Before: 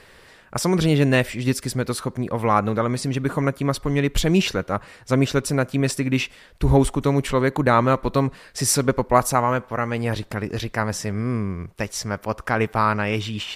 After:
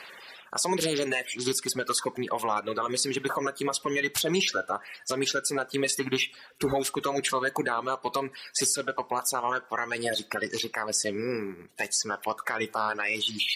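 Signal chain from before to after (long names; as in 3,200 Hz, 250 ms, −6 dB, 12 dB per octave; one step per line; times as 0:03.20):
spectral magnitudes quantised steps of 30 dB
meter weighting curve A
reverb reduction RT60 0.92 s
high-shelf EQ 4,400 Hz +9 dB
downward compressor 6 to 1, threshold −24 dBFS, peak gain reduction 12.5 dB
brickwall limiter −19 dBFS, peak gain reduction 9 dB
on a send: convolution reverb, pre-delay 3 ms, DRR 14 dB
on the sum: level +3 dB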